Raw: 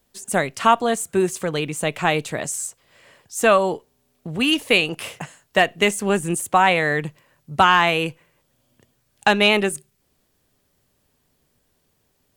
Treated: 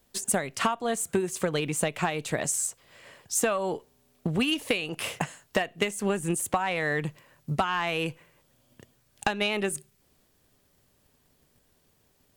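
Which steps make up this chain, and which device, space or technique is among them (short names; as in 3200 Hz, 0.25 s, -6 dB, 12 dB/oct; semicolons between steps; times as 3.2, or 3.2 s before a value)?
drum-bus smash (transient shaper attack +7 dB, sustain +1 dB; compressor 10:1, threshold -22 dBFS, peak gain reduction 18 dB; soft clip -12.5 dBFS, distortion -20 dB)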